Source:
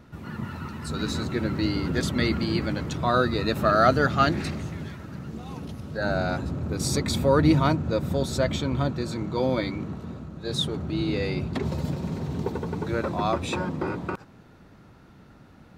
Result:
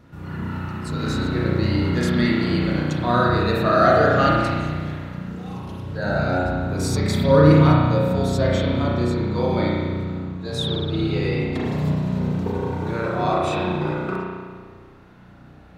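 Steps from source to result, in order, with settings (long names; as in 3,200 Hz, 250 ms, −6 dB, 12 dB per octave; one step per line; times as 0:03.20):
spring reverb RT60 1.6 s, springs 33 ms, chirp 30 ms, DRR −5 dB
level −1.5 dB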